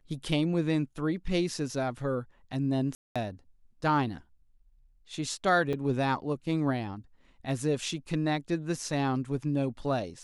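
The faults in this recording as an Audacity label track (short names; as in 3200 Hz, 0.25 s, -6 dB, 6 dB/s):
2.950000	3.160000	gap 0.206 s
5.730000	5.730000	gap 4.3 ms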